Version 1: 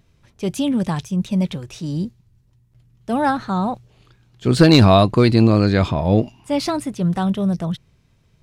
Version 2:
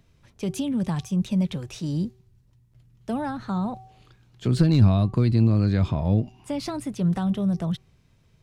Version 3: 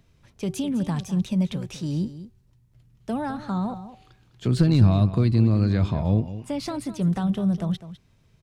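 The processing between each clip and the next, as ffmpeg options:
-filter_complex "[0:a]bandreject=f=380.5:t=h:w=4,bandreject=f=761:t=h:w=4,bandreject=f=1.1415k:t=h:w=4,acrossover=split=210[a][b];[b]acompressor=threshold=-27dB:ratio=6[c];[a][c]amix=inputs=2:normalize=0,volume=-2dB"
-af "aecho=1:1:204:0.211"

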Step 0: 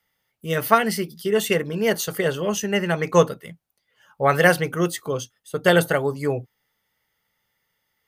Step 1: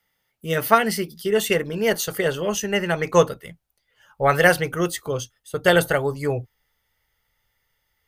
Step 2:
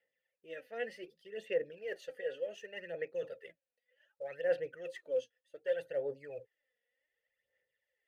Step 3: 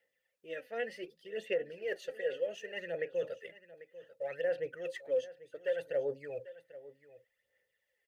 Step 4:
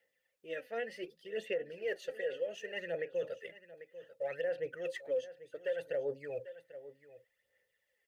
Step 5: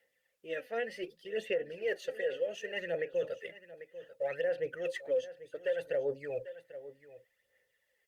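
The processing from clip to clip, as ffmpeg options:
-af "bandreject=f=1.1k:w=29,asubboost=boost=7.5:cutoff=67,volume=1dB"
-filter_complex "[0:a]areverse,acompressor=threshold=-30dB:ratio=4,areverse,asplit=3[a][b][c];[a]bandpass=f=530:t=q:w=8,volume=0dB[d];[b]bandpass=f=1.84k:t=q:w=8,volume=-6dB[e];[c]bandpass=f=2.48k:t=q:w=8,volume=-9dB[f];[d][e][f]amix=inputs=3:normalize=0,aphaser=in_gain=1:out_gain=1:delay=4.2:decay=0.6:speed=0.66:type=sinusoidal,volume=-2.5dB"
-af "alimiter=level_in=4dB:limit=-24dB:level=0:latency=1:release=172,volume=-4dB,aecho=1:1:793:0.141,volume=4dB"
-af "alimiter=level_in=4dB:limit=-24dB:level=0:latency=1:release=214,volume=-4dB,volume=1dB"
-af "volume=3dB" -ar 48000 -c:a libopus -b:a 64k

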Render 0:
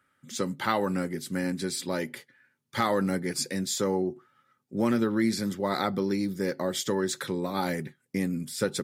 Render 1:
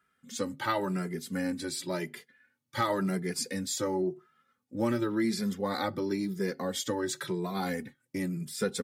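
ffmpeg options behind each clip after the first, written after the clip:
-filter_complex "[0:a]asplit=2[a][b];[b]adelay=2.5,afreqshift=0.94[c];[a][c]amix=inputs=2:normalize=1"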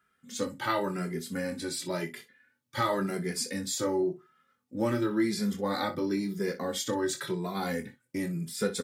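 -af "aecho=1:1:24|61:0.473|0.2"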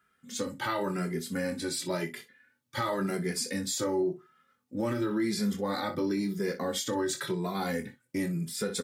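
-af "alimiter=limit=-23dB:level=0:latency=1:release=62,volume=1.5dB"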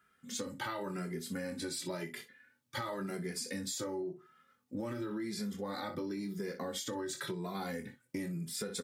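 -af "acompressor=threshold=-36dB:ratio=6"

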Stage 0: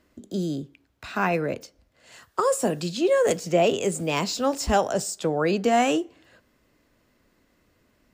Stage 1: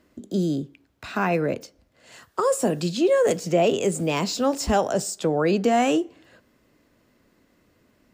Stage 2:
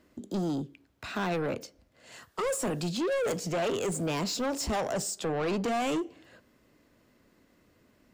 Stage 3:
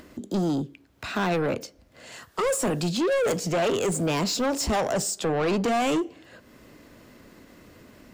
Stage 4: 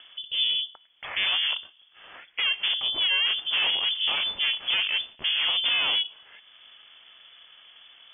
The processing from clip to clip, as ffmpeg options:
-filter_complex "[0:a]lowshelf=f=92:g=-11.5,asplit=2[a][b];[b]alimiter=limit=-19dB:level=0:latency=1:release=116,volume=-1dB[c];[a][c]amix=inputs=2:normalize=0,lowshelf=f=410:g=6.5,volume=-4.5dB"
-af "asoftclip=type=tanh:threshold=-24.5dB,volume=-2dB"
-af "acompressor=mode=upward:threshold=-46dB:ratio=2.5,volume=5.5dB"
-af "aeval=exprs='val(0)*sin(2*PI*200*n/s)':c=same,lowpass=f=3k:t=q:w=0.5098,lowpass=f=3k:t=q:w=0.6013,lowpass=f=3k:t=q:w=0.9,lowpass=f=3k:t=q:w=2.563,afreqshift=-3500,volume=2dB"

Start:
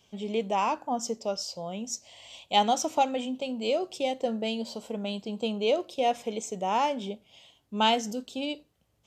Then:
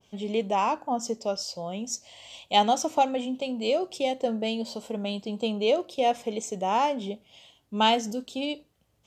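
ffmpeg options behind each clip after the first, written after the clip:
-af "adynamicequalizer=threshold=0.0126:dfrequency=1600:dqfactor=0.7:tfrequency=1600:tqfactor=0.7:attack=5:release=100:ratio=0.375:range=2.5:mode=cutabove:tftype=highshelf,volume=2dB"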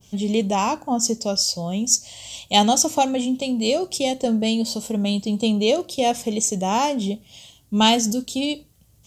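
-af "bass=f=250:g=13,treble=f=4k:g=15,volume=2.5dB"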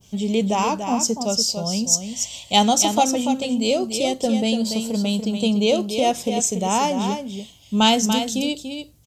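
-af "aecho=1:1:288:0.422"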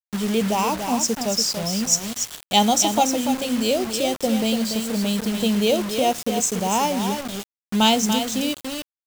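-af "acrusher=bits=4:mix=0:aa=0.000001,volume=-1dB"

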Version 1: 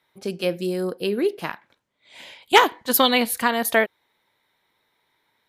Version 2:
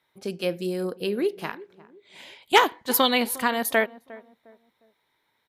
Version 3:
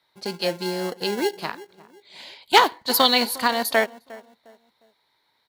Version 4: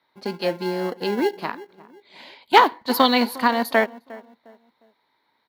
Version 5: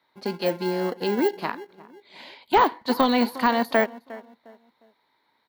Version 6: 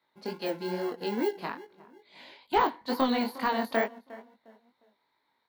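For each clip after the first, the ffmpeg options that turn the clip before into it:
-filter_complex "[0:a]asplit=2[a][b];[b]adelay=356,lowpass=f=940:p=1,volume=-18dB,asplit=2[c][d];[d]adelay=356,lowpass=f=940:p=1,volume=0.37,asplit=2[e][f];[f]adelay=356,lowpass=f=940:p=1,volume=0.37[g];[a][c][e][g]amix=inputs=4:normalize=0,volume=-3dB"
-filter_complex "[0:a]equalizer=f=4.4k:t=o:w=0.37:g=14.5,acrossover=split=540|990[a][b][c];[a]acrusher=samples=36:mix=1:aa=0.000001[d];[b]acontrast=77[e];[d][e][c]amix=inputs=3:normalize=0"
-af "equalizer=f=250:t=o:w=1:g=10,equalizer=f=500:t=o:w=1:g=3,equalizer=f=1k:t=o:w=1:g=6,equalizer=f=2k:t=o:w=1:g=4,equalizer=f=8k:t=o:w=1:g=-7,volume=-4.5dB"
-af "deesser=0.7"
-af "flanger=delay=19:depth=4.9:speed=2.3,volume=-3.5dB"

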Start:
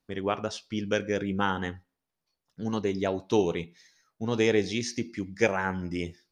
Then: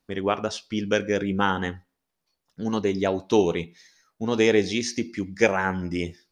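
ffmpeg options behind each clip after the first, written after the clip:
-af "equalizer=f=120:w=4.5:g=-7.5,volume=4.5dB"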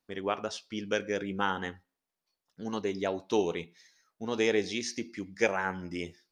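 -af "lowshelf=f=210:g=-8,volume=-6dB"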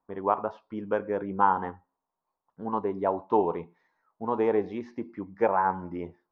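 -af "lowpass=f=980:t=q:w=4.2,volume=1dB"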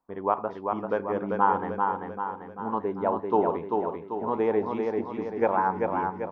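-af "aecho=1:1:391|782|1173|1564|1955|2346|2737:0.631|0.328|0.171|0.0887|0.0461|0.024|0.0125"

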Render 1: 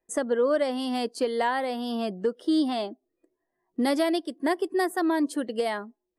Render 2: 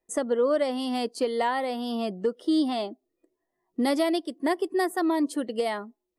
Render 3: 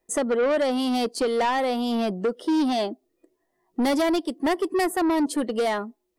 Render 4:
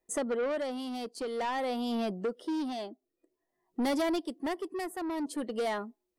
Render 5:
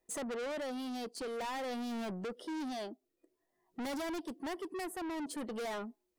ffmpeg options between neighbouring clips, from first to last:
-af "bandreject=f=1.6k:w=9.1"
-af "asoftclip=type=tanh:threshold=-25.5dB,volume=7dB"
-af "tremolo=f=0.51:d=0.52,volume=-7dB"
-af "asoftclip=type=tanh:threshold=-38dB,volume=1dB"

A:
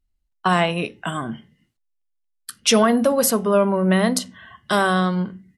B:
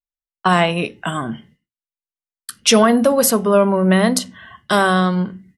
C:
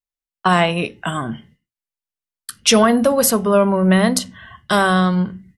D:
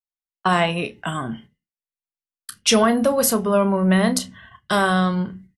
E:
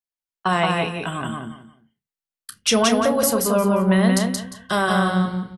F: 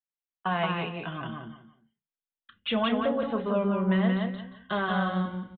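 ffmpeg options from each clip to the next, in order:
-af "agate=range=-33dB:threshold=-47dB:ratio=3:detection=peak,volume=3.5dB"
-af "asubboost=boost=2.5:cutoff=150"
-filter_complex "[0:a]agate=range=-9dB:threshold=-39dB:ratio=16:detection=peak,asplit=2[a][b];[b]adelay=31,volume=-12.5dB[c];[a][c]amix=inputs=2:normalize=0,volume=-3.5dB"
-af "aecho=1:1:176|352|528:0.708|0.17|0.0408,volume=-2dB"
-af "aresample=8000,aresample=44100,flanger=delay=3.5:depth=2.5:regen=-41:speed=0.37:shape=sinusoidal,volume=-4.5dB"

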